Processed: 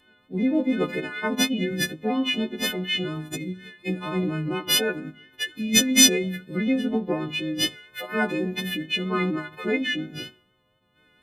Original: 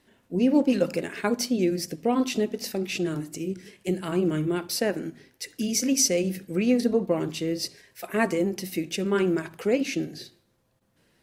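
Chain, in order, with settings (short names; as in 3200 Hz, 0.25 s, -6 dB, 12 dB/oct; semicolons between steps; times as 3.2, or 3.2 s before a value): frequency quantiser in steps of 3 st; vibrato 4.2 Hz 20 cents; formant shift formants -2 st; gain -1 dB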